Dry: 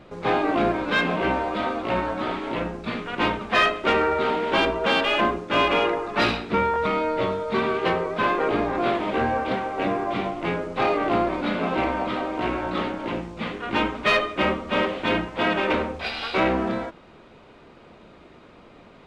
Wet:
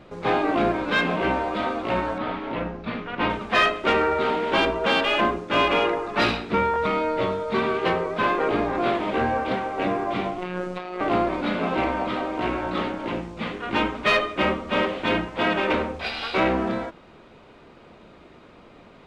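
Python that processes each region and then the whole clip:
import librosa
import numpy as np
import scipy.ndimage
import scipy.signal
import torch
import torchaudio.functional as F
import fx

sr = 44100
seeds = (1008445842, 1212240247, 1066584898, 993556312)

y = fx.chain(x, sr, fx.air_absorb(metres=180.0),
    fx.notch(hz=370.0, q=6.6), at=(2.18, 3.3))
y = fx.chain(y, sr, fx.robotise(hz=181.0),
    fx.over_compress(threshold_db=-31.0, ratio=-1.0), at=(10.38, 11.01))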